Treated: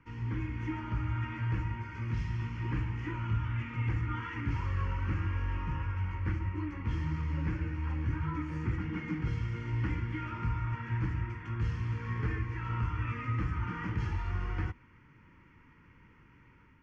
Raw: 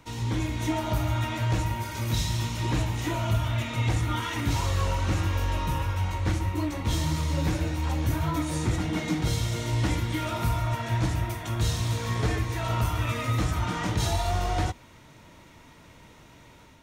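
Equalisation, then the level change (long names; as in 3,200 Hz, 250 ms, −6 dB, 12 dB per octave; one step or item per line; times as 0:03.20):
low-pass filter 3,900 Hz 24 dB per octave
phaser with its sweep stopped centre 1,600 Hz, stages 4
−5.5 dB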